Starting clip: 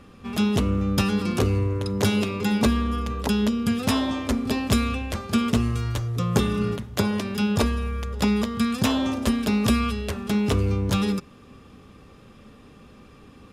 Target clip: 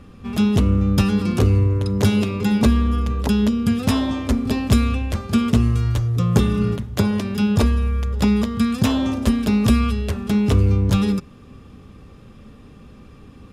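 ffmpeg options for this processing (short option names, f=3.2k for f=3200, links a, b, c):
-af "lowshelf=f=220:g=9"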